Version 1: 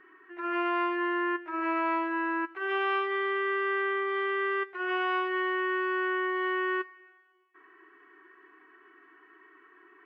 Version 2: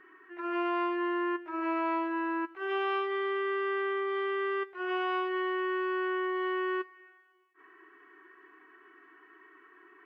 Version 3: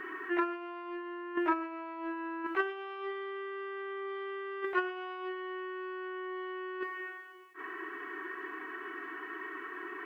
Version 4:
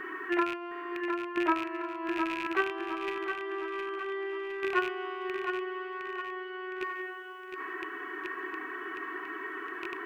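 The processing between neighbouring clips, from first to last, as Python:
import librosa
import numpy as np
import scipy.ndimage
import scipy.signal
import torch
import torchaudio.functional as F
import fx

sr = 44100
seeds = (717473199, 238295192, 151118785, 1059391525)

y1 = fx.dynamic_eq(x, sr, hz=1800.0, q=1.1, threshold_db=-43.0, ratio=4.0, max_db=-6)
y1 = fx.attack_slew(y1, sr, db_per_s=280.0)
y2 = fx.over_compress(y1, sr, threshold_db=-39.0, ratio=-0.5)
y2 = F.gain(torch.from_numpy(y2), 5.0).numpy()
y3 = fx.rattle_buzz(y2, sr, strikes_db=-50.0, level_db=-27.0)
y3 = fx.echo_feedback(y3, sr, ms=712, feedback_pct=49, wet_db=-6.5)
y3 = F.gain(torch.from_numpy(y3), 2.5).numpy()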